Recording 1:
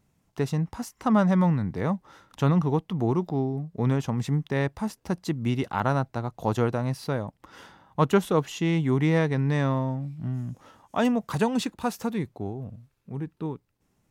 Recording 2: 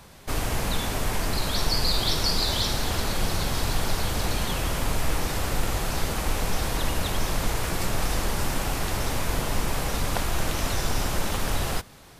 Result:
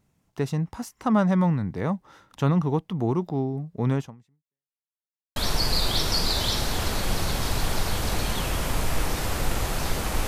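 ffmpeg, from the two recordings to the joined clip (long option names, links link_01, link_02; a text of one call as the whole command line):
ffmpeg -i cue0.wav -i cue1.wav -filter_complex "[0:a]apad=whole_dur=10.27,atrim=end=10.27,asplit=2[link_01][link_02];[link_01]atrim=end=4.78,asetpts=PTS-STARTPTS,afade=type=out:start_time=3.99:duration=0.79:curve=exp[link_03];[link_02]atrim=start=4.78:end=5.36,asetpts=PTS-STARTPTS,volume=0[link_04];[1:a]atrim=start=1.48:end=6.39,asetpts=PTS-STARTPTS,afade=type=in:duration=0.004:curve=hsin[link_05];[link_03][link_04][link_05]concat=n=3:v=0:a=1" out.wav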